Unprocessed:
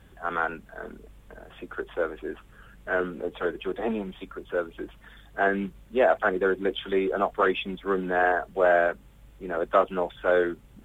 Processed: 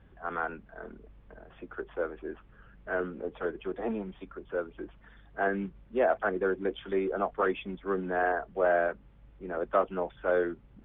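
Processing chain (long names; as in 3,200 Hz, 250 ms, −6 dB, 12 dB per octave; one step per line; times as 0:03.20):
high-frequency loss of the air 390 metres
level −3.5 dB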